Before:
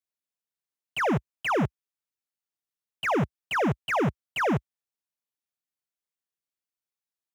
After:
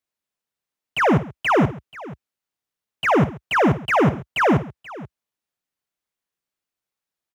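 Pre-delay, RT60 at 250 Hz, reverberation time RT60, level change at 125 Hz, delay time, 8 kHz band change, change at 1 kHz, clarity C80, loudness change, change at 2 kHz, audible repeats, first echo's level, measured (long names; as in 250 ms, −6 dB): no reverb audible, no reverb audible, no reverb audible, +8.0 dB, 54 ms, +3.5 dB, +8.0 dB, no reverb audible, +8.0 dB, +7.0 dB, 3, −13.5 dB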